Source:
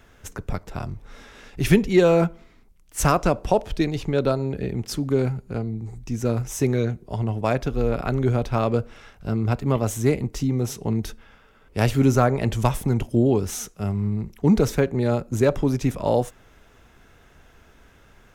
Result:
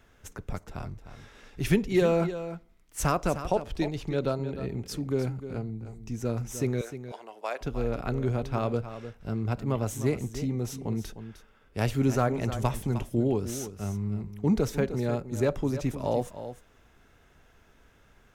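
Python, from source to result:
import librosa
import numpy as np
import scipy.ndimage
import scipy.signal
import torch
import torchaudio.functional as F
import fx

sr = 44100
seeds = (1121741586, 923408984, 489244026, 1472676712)

y = fx.bessel_highpass(x, sr, hz=640.0, order=4, at=(6.81, 7.61))
y = y + 10.0 ** (-11.5 / 20.0) * np.pad(y, (int(306 * sr / 1000.0), 0))[:len(y)]
y = F.gain(torch.from_numpy(y), -7.0).numpy()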